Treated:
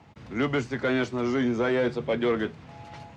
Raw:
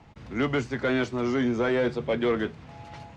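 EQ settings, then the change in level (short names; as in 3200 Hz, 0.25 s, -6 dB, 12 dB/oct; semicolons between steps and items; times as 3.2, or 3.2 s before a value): HPF 74 Hz; 0.0 dB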